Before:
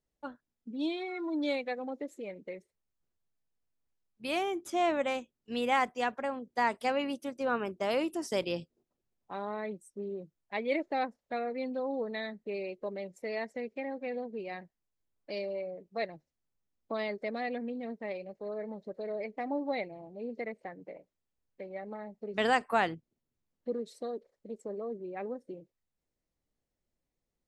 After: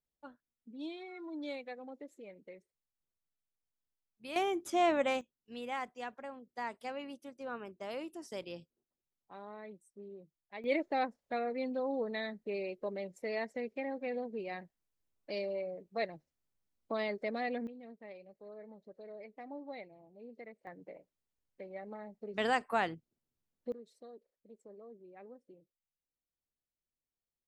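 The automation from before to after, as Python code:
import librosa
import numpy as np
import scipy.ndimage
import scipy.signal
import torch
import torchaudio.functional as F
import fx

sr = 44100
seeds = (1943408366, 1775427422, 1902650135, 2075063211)

y = fx.gain(x, sr, db=fx.steps((0.0, -9.5), (4.36, 0.0), (5.21, -11.0), (10.64, -1.0), (17.67, -12.0), (20.67, -4.0), (23.72, -14.5)))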